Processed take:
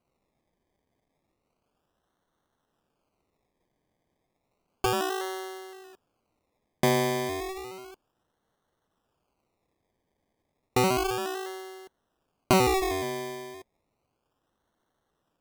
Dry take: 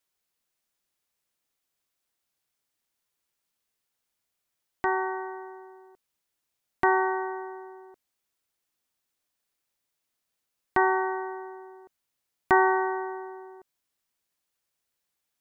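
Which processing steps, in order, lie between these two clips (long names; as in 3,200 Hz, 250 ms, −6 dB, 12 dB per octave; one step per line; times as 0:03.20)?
notch filter 910 Hz, Q 13
in parallel at 0 dB: downward compressor, threshold −33 dBFS, peak gain reduction 16 dB
on the sum: sample-and-hold swept by an LFO 25×, swing 60% 0.32 Hz
level −2 dB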